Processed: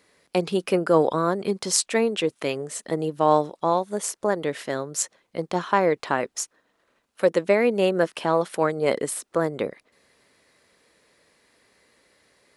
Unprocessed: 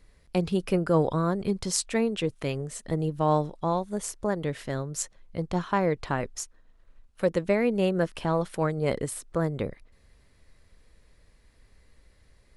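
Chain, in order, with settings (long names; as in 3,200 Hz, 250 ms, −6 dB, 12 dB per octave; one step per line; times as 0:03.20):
high-pass filter 290 Hz 12 dB per octave
level +6 dB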